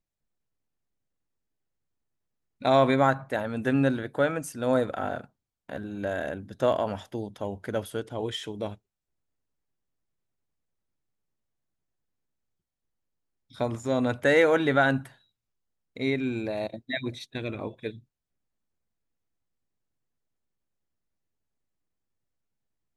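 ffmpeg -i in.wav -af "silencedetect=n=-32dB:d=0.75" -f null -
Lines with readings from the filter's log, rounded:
silence_start: 0.00
silence_end: 2.62 | silence_duration: 2.62
silence_start: 8.72
silence_end: 13.61 | silence_duration: 4.89
silence_start: 15.01
silence_end: 15.97 | silence_duration: 0.96
silence_start: 17.90
silence_end: 22.97 | silence_duration: 5.07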